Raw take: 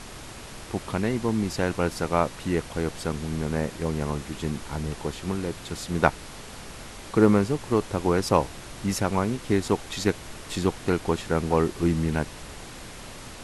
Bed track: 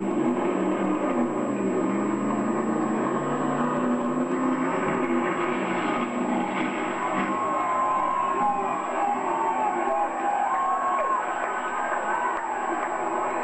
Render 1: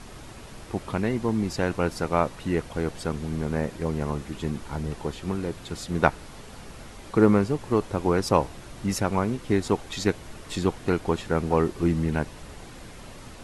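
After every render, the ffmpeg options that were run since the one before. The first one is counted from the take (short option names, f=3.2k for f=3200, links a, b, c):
-af "afftdn=nr=6:nf=-42"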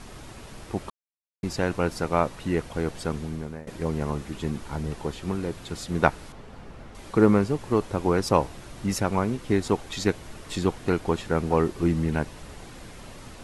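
-filter_complex "[0:a]asettb=1/sr,asplit=3[a][b][c];[a]atrim=end=6.324[d];[b]atrim=start=6.32:end=6.95,asetpts=PTS-STARTPTS,afade=t=in:d=0.004:c=qsin,afade=t=out:st=0.626:d=0.004:c=qsin,lowpass=f=1.6k:p=1[e];[c]atrim=start=6.946[f];[d][e]acrossfade=d=0.004:c1=hsin:c2=qsin[g];[g][f]acrossfade=d=0.004:c1=qsin:c2=hsin,asplit=4[h][i][j][k];[h]atrim=end=0.9,asetpts=PTS-STARTPTS,afade=t=out:st=0.896:d=0.004:c=hsin[l];[i]atrim=start=0.9:end=1.43,asetpts=PTS-STARTPTS,volume=0[m];[j]atrim=start=1.43:end=3.67,asetpts=PTS-STARTPTS,afade=t=in:d=0.004:c=hsin,afade=t=out:st=1.74:d=0.5:silence=0.0841395[n];[k]atrim=start=3.67,asetpts=PTS-STARTPTS,afade=t=in:d=0.004:c=hsin:silence=0.0841395[o];[l][m][n][o]concat=n=4:v=0:a=1"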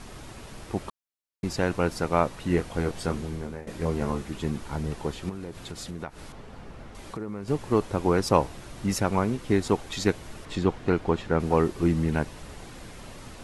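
-filter_complex "[0:a]asettb=1/sr,asplit=3[a][b][c];[a]atrim=end=2.484[d];[b]atrim=start=2.48:end=4.22,asetpts=PTS-STARTPTS,afade=t=in:d=0.004:c=qsin,afade=t=out:st=1.736:d=0.004:c=qsin,asplit=2[e][f];[f]adelay=23,volume=-6.5dB[g];[e][g]amix=inputs=2:normalize=0,atrim=end_sample=76734[h];[c]atrim=start=4.216[i];[d][h]acrossfade=d=0.004:c1=hsin:c2=qsin[j];[j][i]acrossfade=d=0.004:c1=qsin:c2=hsin,asettb=1/sr,asplit=3[k][l][m];[k]atrim=end=5.294[n];[l]atrim=start=5.29:end=7.48,asetpts=PTS-STARTPTS,afade=t=in:d=0.004:c=qsin,afade=t=out:st=2.186:d=0.004:c=qsin,acompressor=threshold=-33dB:ratio=5:attack=3.2:release=140:knee=1:detection=peak[o];[m]atrim=start=7.476[p];[n][o]acrossfade=d=0.004:c1=hsin:c2=qsin[q];[q][p]acrossfade=d=0.004:c1=qsin:c2=hsin,asettb=1/sr,asplit=3[r][s][t];[r]atrim=end=10.454[u];[s]atrim=start=10.45:end=11.4,asetpts=PTS-STARTPTS,afade=t=in:d=0.004:c=qsin,afade=t=out:st=0.946:d=0.004:c=qsin,aemphasis=mode=reproduction:type=50fm[v];[t]atrim=start=11.396[w];[u][v]acrossfade=d=0.004:c1=hsin:c2=qsin[x];[x][w]acrossfade=d=0.004:c1=qsin:c2=hsin"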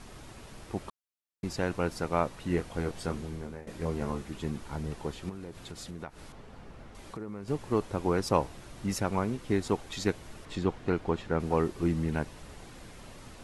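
-af "volume=-5dB"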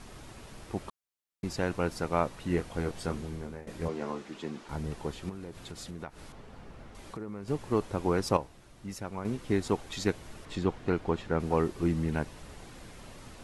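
-filter_complex "[0:a]asettb=1/sr,asplit=3[a][b][c];[a]atrim=end=3.884[d];[b]atrim=start=3.88:end=4.69,asetpts=PTS-STARTPTS,afade=t=in:d=0.004:c=qsin,afade=t=out:st=0.806:d=0.004:c=qsin,acrossover=split=190 7700:gain=0.0708 1 0.141[e][f][g];[e][f][g]amix=inputs=3:normalize=0[h];[c]atrim=start=4.686[i];[d][h]acrossfade=d=0.004:c1=hsin:c2=qsin[j];[j][i]acrossfade=d=0.004:c1=qsin:c2=hsin,asplit=3[k][l][m];[k]atrim=end=8.372[n];[l]atrim=start=8.368:end=9.252,asetpts=PTS-STARTPTS,volume=-8.5dB[o];[m]atrim=start=9.248[p];[n][o]acrossfade=d=0.004:c1=hsin:c2=hsin[q];[q][p]acrossfade=d=0.004:c1=hsin:c2=hsin"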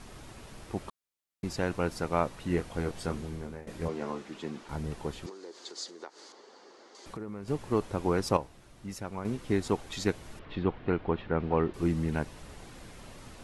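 -filter_complex "[0:a]asettb=1/sr,asplit=3[a][b][c];[a]atrim=end=5.264[d];[b]atrim=start=5.26:end=7.06,asetpts=PTS-STARTPTS,afade=t=in:d=0.004:c=qsin,afade=t=out:st=1.796:d=0.004:c=qsin,highpass=f=350:w=0.5412,highpass=f=350:w=1.3066,equalizer=f=370:t=q:w=4:g=4,equalizer=f=660:t=q:w=4:g=-5,equalizer=f=1.4k:t=q:w=4:g=-3,equalizer=f=2.5k:t=q:w=4:g=-8,equalizer=f=4.6k:t=q:w=4:g=10,equalizer=f=6.5k:t=q:w=4:g=7,lowpass=f=8k:w=0.5412,lowpass=f=8k:w=1.3066[e];[c]atrim=start=7.056[f];[d][e]acrossfade=d=0.004:c1=hsin:c2=qsin[g];[g][f]acrossfade=d=0.004:c1=qsin:c2=hsin,asettb=1/sr,asplit=3[h][i][j];[h]atrim=end=10.394[k];[i]atrim=start=10.39:end=11.74,asetpts=PTS-STARTPTS,afade=t=in:d=0.004:c=qsin,afade=t=out:st=1.346:d=0.004:c=qsin,lowpass=f=3.5k:w=0.5412,lowpass=f=3.5k:w=1.3066[l];[j]atrim=start=11.736[m];[k][l]acrossfade=d=0.004:c1=hsin:c2=qsin[n];[n][m]acrossfade=d=0.004:c1=qsin:c2=hsin"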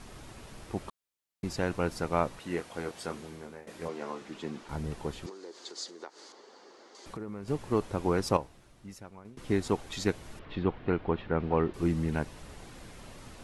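-filter_complex "[0:a]asettb=1/sr,asplit=3[a][b][c];[a]atrim=end=2.394[d];[b]atrim=start=2.39:end=4.22,asetpts=PTS-STARTPTS,afade=t=in:d=0.004:c=qsin,afade=t=out:st=1.826:d=0.004:c=qsin,highpass=f=390:p=1[e];[c]atrim=start=4.216[f];[d][e]acrossfade=d=0.004:c1=hsin:c2=qsin[g];[g][f]acrossfade=d=0.004:c1=qsin:c2=hsin,asplit=2[h][i];[h]atrim=end=9.37,asetpts=PTS-STARTPTS,afade=t=out:st=8.34:d=1.03:silence=0.0707946[j];[i]atrim=start=9.37,asetpts=PTS-STARTPTS,afade=t=in:d=0.004:c=hsin:silence=0.0707946[k];[j][k]concat=n=2:v=0:a=1"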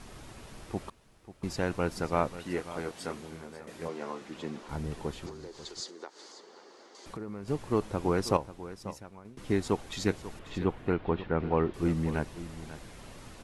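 -af "aecho=1:1:540:0.188"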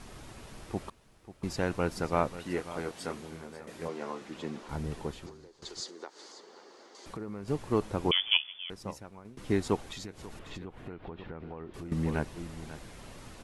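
-filter_complex "[0:a]asettb=1/sr,asplit=3[a][b][c];[a]atrim=end=8.114[d];[b]atrim=start=8.11:end=8.7,asetpts=PTS-STARTPTS,afade=t=in:d=0.004:c=qsin,afade=t=out:st=0.586:d=0.004:c=qsin,lowpass=f=3k:t=q:w=0.5098,lowpass=f=3k:t=q:w=0.6013,lowpass=f=3k:t=q:w=0.9,lowpass=f=3k:t=q:w=2.563,afreqshift=-3500[e];[c]atrim=start=8.696[f];[d][e]acrossfade=d=0.004:c1=hsin:c2=qsin[g];[g][f]acrossfade=d=0.004:c1=qsin:c2=hsin,asettb=1/sr,asplit=3[h][i][j];[h]atrim=end=9.924[k];[i]atrim=start=9.92:end=11.92,asetpts=PTS-STARTPTS,afade=t=in:d=0.004:c=qsin,afade=t=out:st=1.996:d=0.004:c=qsin,acompressor=threshold=-38dB:ratio=10:attack=3.2:release=140:knee=1:detection=peak[l];[j]atrim=start=11.916[m];[k][l]acrossfade=d=0.004:c1=hsin:c2=qsin[n];[n][m]acrossfade=d=0.004:c1=qsin:c2=hsin,asplit=2[o][p];[o]atrim=end=5.62,asetpts=PTS-STARTPTS,afade=t=out:st=4.96:d=0.66:silence=0.141254[q];[p]atrim=start=5.62,asetpts=PTS-STARTPTS,afade=t=in:d=0.004:c=hsin:silence=0.141254[r];[q][r]concat=n=2:v=0:a=1"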